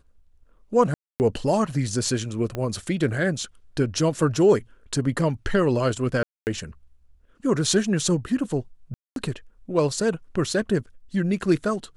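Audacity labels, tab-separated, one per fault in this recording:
0.940000	1.200000	gap 0.259 s
2.550000	2.550000	pop -16 dBFS
6.230000	6.470000	gap 0.239 s
8.940000	9.160000	gap 0.222 s

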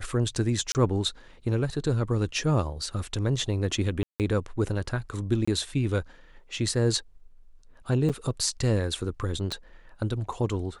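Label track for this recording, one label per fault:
0.720000	0.750000	gap 29 ms
4.030000	4.200000	gap 0.168 s
5.450000	5.470000	gap 25 ms
8.090000	8.100000	gap 6.6 ms
9.520000	9.520000	pop -18 dBFS

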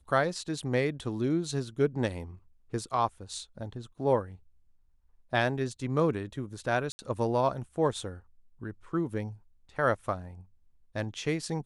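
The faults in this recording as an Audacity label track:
6.920000	6.990000	gap 70 ms

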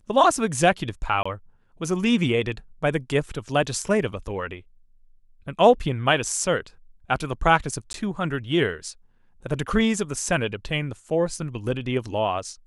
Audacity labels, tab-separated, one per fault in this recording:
1.230000	1.250000	gap 25 ms
7.930000	7.940000	gap 12 ms

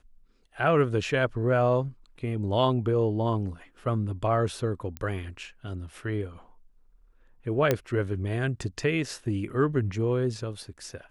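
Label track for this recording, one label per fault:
4.970000	4.970000	pop -21 dBFS
7.710000	7.710000	pop -9 dBFS

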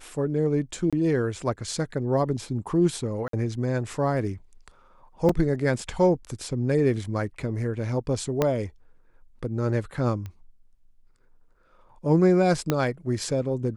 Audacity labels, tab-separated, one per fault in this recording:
0.900000	0.930000	gap 26 ms
3.280000	3.330000	gap 53 ms
5.290000	5.290000	gap 3.7 ms
8.420000	8.420000	pop -9 dBFS
10.260000	10.260000	pop -24 dBFS
12.700000	12.700000	pop -9 dBFS

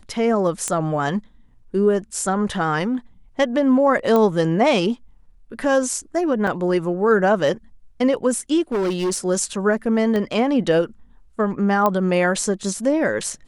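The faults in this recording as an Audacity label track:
0.680000	0.680000	pop -10 dBFS
4.160000	4.160000	pop -8 dBFS
6.470000	6.470000	gap 4.4 ms
8.720000	9.180000	clipped -18 dBFS
10.160000	10.160000	pop -13 dBFS
11.860000	11.860000	pop -7 dBFS

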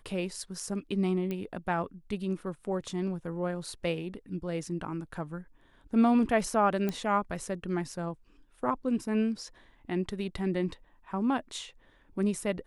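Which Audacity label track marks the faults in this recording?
1.310000	1.310000	pop -22 dBFS
6.890000	6.890000	pop -18 dBFS

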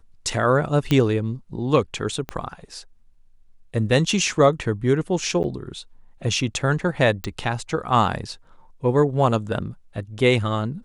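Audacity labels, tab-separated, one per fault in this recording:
0.910000	0.910000	pop -8 dBFS
2.290000	2.290000	pop -15 dBFS
5.430000	5.440000	gap 9.6 ms
7.240000	7.240000	pop -13 dBFS

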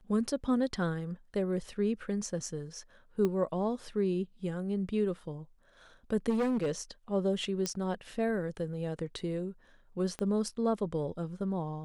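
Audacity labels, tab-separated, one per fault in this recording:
3.250000	3.250000	pop -19 dBFS
6.290000	6.720000	clipped -26 dBFS
7.660000	7.660000	pop -17 dBFS
10.190000	10.190000	pop -24 dBFS

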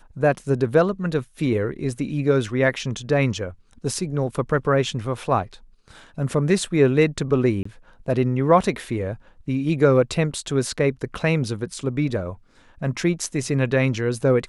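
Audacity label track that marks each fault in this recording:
7.630000	7.650000	gap 24 ms

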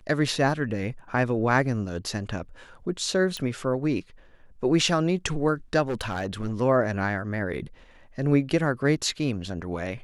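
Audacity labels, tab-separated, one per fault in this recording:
3.370000	3.370000	pop -17 dBFS
5.840000	6.620000	clipped -23.5 dBFS

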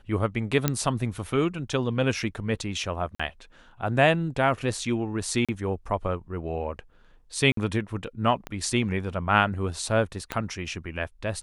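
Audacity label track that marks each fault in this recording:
0.680000	0.680000	pop -7 dBFS
3.150000	3.190000	gap 45 ms
5.450000	5.490000	gap 36 ms
7.520000	7.570000	gap 53 ms
8.470000	8.470000	pop -19 dBFS
10.320000	10.320000	pop -13 dBFS

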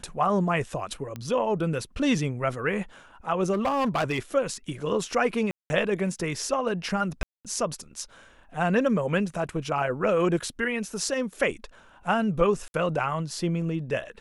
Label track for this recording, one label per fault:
1.160000	1.160000	pop -21 dBFS
3.520000	4.190000	clipped -21 dBFS
5.510000	5.700000	gap 0.19 s
7.230000	7.450000	gap 0.217 s
12.680000	12.740000	gap 61 ms

